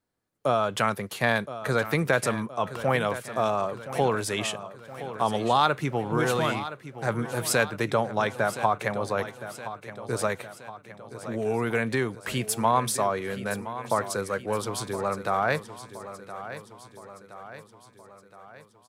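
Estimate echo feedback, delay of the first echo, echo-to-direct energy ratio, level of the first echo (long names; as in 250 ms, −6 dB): 54%, 1,019 ms, −11.5 dB, −13.0 dB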